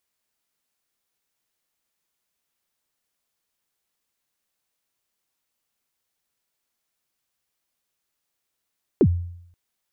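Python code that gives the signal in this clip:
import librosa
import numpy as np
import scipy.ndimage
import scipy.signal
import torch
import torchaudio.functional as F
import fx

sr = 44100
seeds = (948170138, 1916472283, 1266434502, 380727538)

y = fx.drum_kick(sr, seeds[0], length_s=0.53, level_db=-10.0, start_hz=460.0, end_hz=87.0, sweep_ms=62.0, decay_s=0.72, click=False)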